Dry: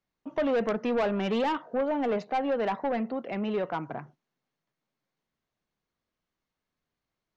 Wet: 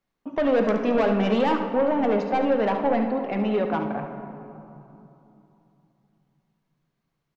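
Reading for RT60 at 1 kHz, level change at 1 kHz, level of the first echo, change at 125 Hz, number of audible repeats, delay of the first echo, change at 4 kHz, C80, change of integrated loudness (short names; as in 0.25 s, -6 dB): 3.0 s, +5.5 dB, -10.0 dB, +7.0 dB, 1, 71 ms, +3.5 dB, 7.5 dB, +6.0 dB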